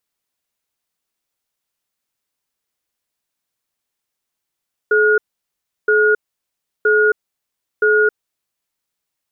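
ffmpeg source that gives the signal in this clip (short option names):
-f lavfi -i "aevalsrc='0.224*(sin(2*PI*427*t)+sin(2*PI*1440*t))*clip(min(mod(t,0.97),0.27-mod(t,0.97))/0.005,0,1)':d=3.76:s=44100"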